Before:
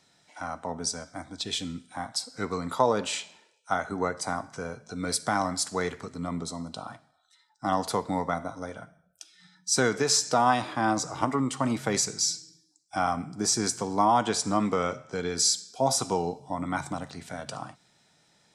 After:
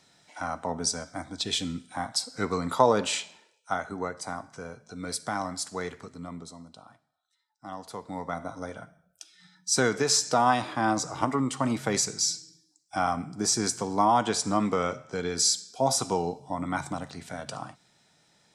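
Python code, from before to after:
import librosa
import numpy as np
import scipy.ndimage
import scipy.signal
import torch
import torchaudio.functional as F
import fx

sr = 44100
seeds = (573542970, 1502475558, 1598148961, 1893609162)

y = fx.gain(x, sr, db=fx.line((3.11, 2.5), (4.09, -4.5), (6.06, -4.5), (6.88, -13.0), (7.85, -13.0), (8.54, 0.0)))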